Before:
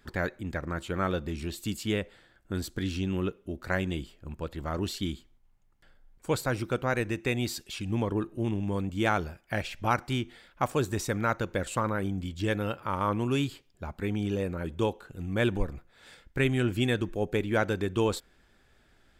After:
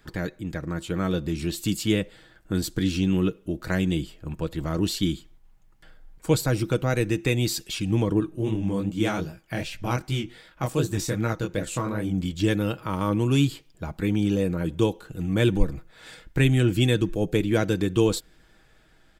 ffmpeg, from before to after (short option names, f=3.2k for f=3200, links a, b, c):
-filter_complex "[0:a]asettb=1/sr,asplit=3[a][b][c];[a]atrim=end=8.204[d];[b]atrim=start=8.2:end=12.14,asetpts=PTS-STARTPTS,afade=t=in:d=0.004:c=qsin,afade=t=out:st=3.936:d=0.004:c=qsin,flanger=delay=17:depth=7.8:speed=2.6[e];[c]atrim=start=12.136[f];[d][e]acrossfade=d=0.004:c1=hsin:c2=qsin[g];[g][f]acrossfade=d=0.004:c1=qsin:c2=hsin,acrossover=split=430|3000[h][i][j];[i]acompressor=threshold=-55dB:ratio=1.5[k];[h][k][j]amix=inputs=3:normalize=0,aecho=1:1:6.3:0.41,dynaudnorm=f=190:g=11:m=4dB,volume=3.5dB"